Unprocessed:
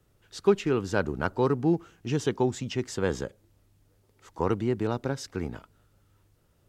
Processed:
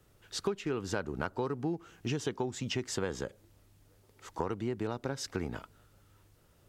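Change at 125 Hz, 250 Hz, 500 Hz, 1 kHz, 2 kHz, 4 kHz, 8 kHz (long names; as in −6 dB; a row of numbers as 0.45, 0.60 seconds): −7.5, −8.0, −8.5, −6.5, −5.5, −0.5, −0.5 decibels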